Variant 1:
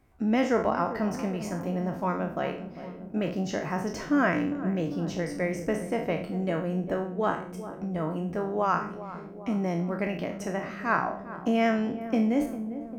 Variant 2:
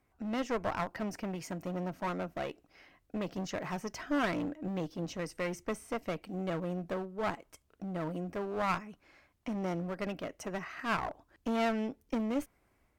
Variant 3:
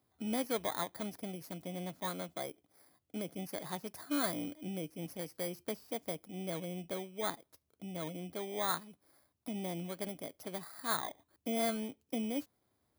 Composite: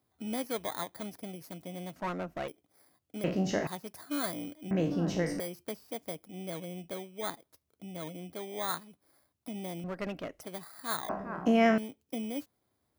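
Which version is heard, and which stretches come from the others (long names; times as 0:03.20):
3
0:01.96–0:02.48: punch in from 2
0:03.24–0:03.67: punch in from 1
0:04.71–0:05.40: punch in from 1
0:09.84–0:10.41: punch in from 2
0:11.09–0:11.78: punch in from 1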